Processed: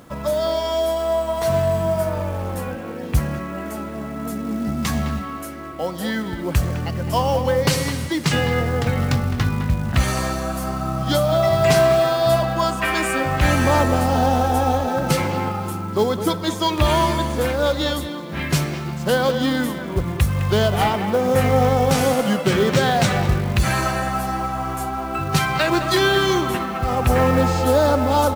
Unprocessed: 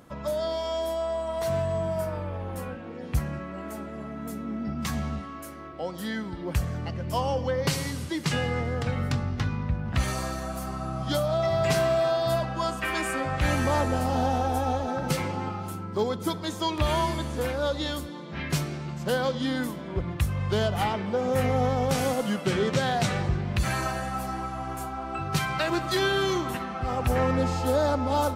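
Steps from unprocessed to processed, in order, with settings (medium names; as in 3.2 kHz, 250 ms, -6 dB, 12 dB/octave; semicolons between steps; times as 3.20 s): companded quantiser 6-bit; speakerphone echo 210 ms, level -9 dB; trim +7.5 dB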